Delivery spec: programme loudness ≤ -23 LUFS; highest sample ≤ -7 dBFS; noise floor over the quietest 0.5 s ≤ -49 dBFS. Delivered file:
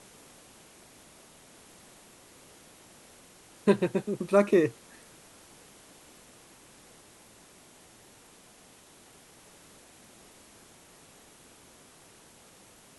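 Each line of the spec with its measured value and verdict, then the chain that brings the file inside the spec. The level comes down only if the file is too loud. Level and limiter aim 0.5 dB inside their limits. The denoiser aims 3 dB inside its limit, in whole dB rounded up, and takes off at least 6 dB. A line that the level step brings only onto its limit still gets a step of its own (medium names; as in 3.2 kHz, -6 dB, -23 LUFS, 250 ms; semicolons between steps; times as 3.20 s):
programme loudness -26.5 LUFS: pass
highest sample -10.0 dBFS: pass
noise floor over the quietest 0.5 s -56 dBFS: pass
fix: none needed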